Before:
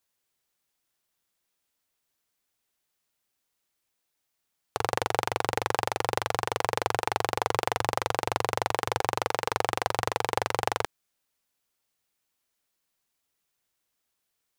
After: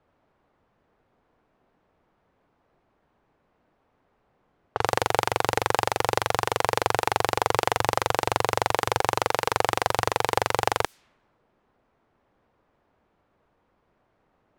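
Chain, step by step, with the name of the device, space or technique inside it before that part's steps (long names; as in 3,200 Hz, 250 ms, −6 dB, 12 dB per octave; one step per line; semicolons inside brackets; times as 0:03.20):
cassette deck with a dynamic noise filter (white noise bed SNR 27 dB; low-pass that shuts in the quiet parts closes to 820 Hz, open at −28 dBFS)
level +4 dB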